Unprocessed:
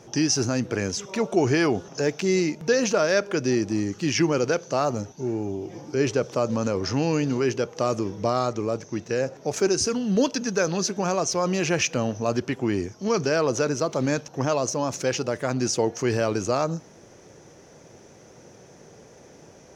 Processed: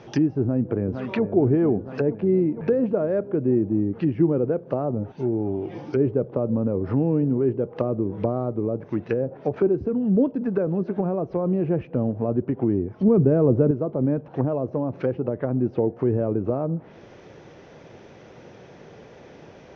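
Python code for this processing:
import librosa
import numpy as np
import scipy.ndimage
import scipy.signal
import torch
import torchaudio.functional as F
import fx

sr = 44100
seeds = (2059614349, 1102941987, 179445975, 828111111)

y = fx.echo_throw(x, sr, start_s=0.41, length_s=0.82, ms=460, feedback_pct=70, wet_db=-10.0)
y = fx.low_shelf(y, sr, hz=340.0, db=10.0, at=(13.0, 13.71))
y = scipy.signal.sosfilt(scipy.signal.butter(4, 3700.0, 'lowpass', fs=sr, output='sos'), y)
y = fx.high_shelf(y, sr, hz=2500.0, db=4.5)
y = fx.env_lowpass_down(y, sr, base_hz=450.0, full_db=-22.0)
y = F.gain(torch.from_numpy(y), 3.5).numpy()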